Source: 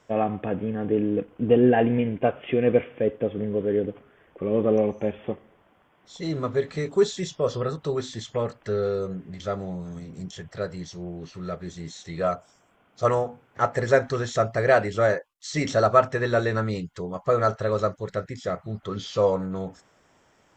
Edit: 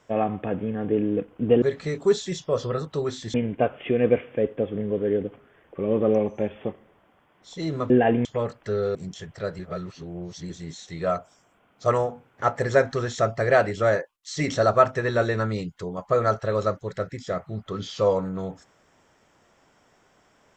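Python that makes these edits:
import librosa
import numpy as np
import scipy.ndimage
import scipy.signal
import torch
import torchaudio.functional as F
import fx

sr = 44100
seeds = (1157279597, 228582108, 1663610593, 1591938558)

y = fx.edit(x, sr, fx.swap(start_s=1.62, length_s=0.35, other_s=6.53, other_length_s=1.72),
    fx.cut(start_s=8.95, length_s=1.17),
    fx.reverse_span(start_s=10.76, length_s=0.91), tone=tone)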